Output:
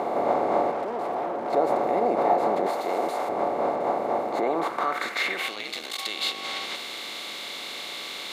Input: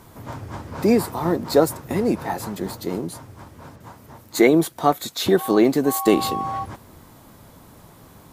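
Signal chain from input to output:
compressor on every frequency bin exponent 0.4
0:02.66–0:03.29: spectral tilt +3.5 dB per octave
0:05.55–0:05.97: ring modulation 110 Hz → 22 Hz
brickwall limiter −9.5 dBFS, peak gain reduction 10.5 dB
hum removal 51.26 Hz, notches 33
0:00.71–0:01.53: gain into a clipping stage and back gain 24 dB
band-pass filter sweep 730 Hz → 3,400 Hz, 0:04.39–0:05.68
level +4 dB

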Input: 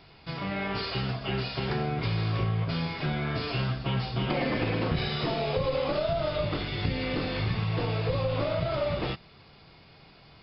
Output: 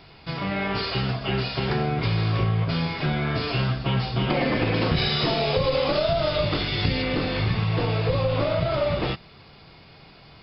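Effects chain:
0:04.74–0:07.02: high-shelf EQ 4,800 Hz +12 dB
level +5 dB

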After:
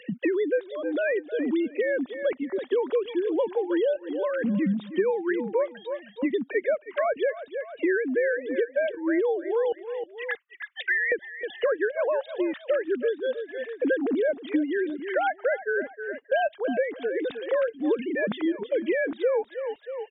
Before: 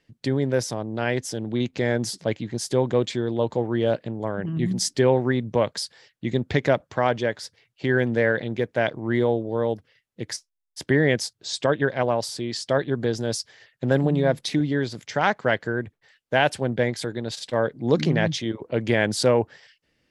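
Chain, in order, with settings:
three sine waves on the formant tracks
0:09.72–0:11.12: high-pass filter 1,100 Hz 24 dB per octave
repeating echo 314 ms, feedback 23%, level −15.5 dB
multiband upward and downward compressor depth 100%
level −3 dB

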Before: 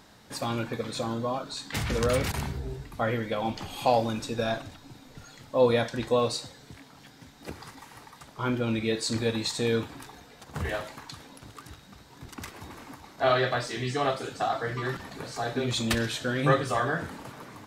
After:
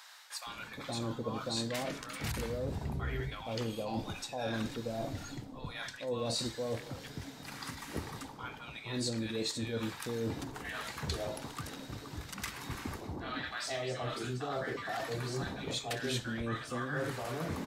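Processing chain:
reversed playback
downward compressor 10 to 1, threshold −37 dBFS, peak gain reduction 20.5 dB
reversed playback
multiband delay without the direct sound highs, lows 470 ms, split 910 Hz
level +4.5 dB

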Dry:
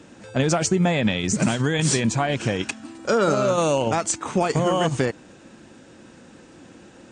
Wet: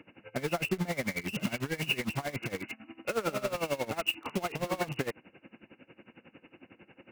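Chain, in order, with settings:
hearing-aid frequency compression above 2,000 Hz 4 to 1
high-pass filter 130 Hz 6 dB per octave
in parallel at −5.5 dB: wrap-around overflow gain 21.5 dB
on the sum: tremolo with a sine in dB 11 Hz, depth 20 dB
level −7 dB

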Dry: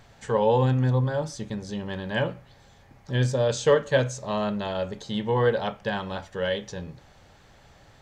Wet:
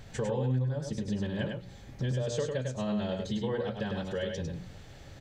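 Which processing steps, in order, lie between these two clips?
low-shelf EQ 410 Hz +5.5 dB
phase-vocoder stretch with locked phases 0.65×
parametric band 980 Hz −7.5 dB 1.1 octaves
mains-hum notches 60/120/180/240/300/360/420/480 Hz
downward compressor 5 to 1, threshold −35 dBFS, peak gain reduction 18 dB
on a send: single-tap delay 101 ms −4.5 dB
on the sum: level +3.5 dB

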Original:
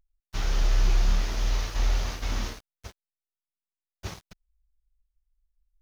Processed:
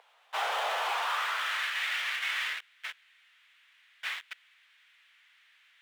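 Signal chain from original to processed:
elliptic band-pass filter 450–3,400 Hz
power curve on the samples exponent 0.5
high-pass filter sweep 760 Hz → 1,900 Hz, 0:00.79–0:01.77

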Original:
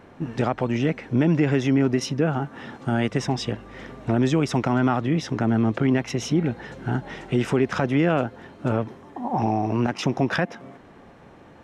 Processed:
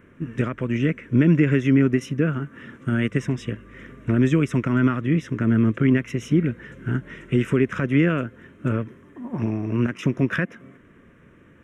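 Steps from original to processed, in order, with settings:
phaser with its sweep stopped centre 1,900 Hz, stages 4
expander for the loud parts 1.5 to 1, over −30 dBFS
level +5 dB

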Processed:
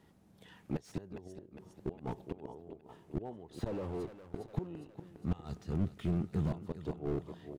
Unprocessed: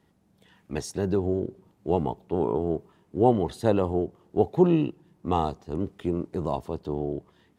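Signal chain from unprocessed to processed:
0:01.92–0:02.45: downward compressor 8 to 1, threshold −27 dBFS, peak gain reduction 9.5 dB
0:03.66–0:04.37: leveller curve on the samples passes 5
0:05.07–0:06.52: gain on a spectral selection 230–1,200 Hz −10 dB
gate with flip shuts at −19 dBFS, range −26 dB
repeating echo 408 ms, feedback 57%, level −15.5 dB
slew-rate limiting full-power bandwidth 8.7 Hz
level +1 dB

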